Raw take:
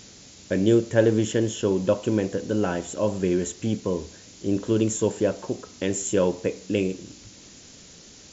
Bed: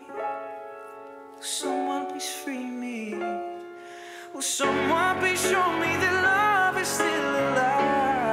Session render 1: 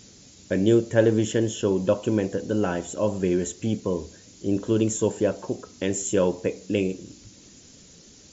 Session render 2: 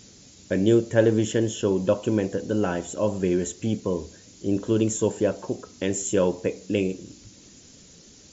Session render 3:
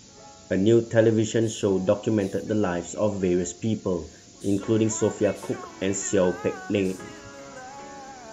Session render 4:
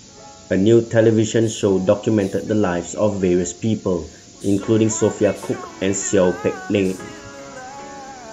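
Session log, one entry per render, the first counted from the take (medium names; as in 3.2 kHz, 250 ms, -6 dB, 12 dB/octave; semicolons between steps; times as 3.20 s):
noise reduction 6 dB, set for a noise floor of -48 dBFS
no audible change
add bed -18.5 dB
trim +6 dB; peak limiter -3 dBFS, peak gain reduction 2.5 dB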